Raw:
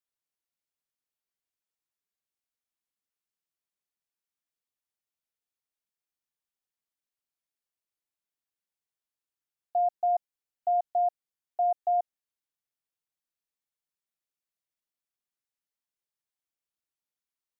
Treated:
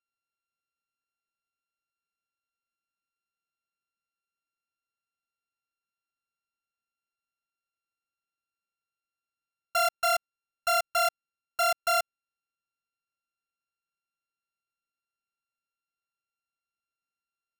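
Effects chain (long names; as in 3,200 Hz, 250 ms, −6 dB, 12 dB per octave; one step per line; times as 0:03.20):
samples sorted by size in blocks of 32 samples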